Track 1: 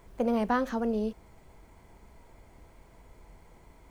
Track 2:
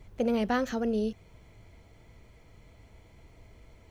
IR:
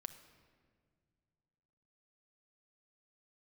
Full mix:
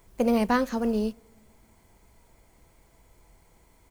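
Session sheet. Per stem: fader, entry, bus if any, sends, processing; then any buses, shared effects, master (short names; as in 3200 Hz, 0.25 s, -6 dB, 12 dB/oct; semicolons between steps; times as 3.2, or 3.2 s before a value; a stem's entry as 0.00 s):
+1.5 dB, 0.00 s, send -5.5 dB, high shelf 4200 Hz +12 dB
-5.5 dB, 0.3 ms, no send, dry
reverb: on, pre-delay 6 ms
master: upward expander 1.5:1, over -39 dBFS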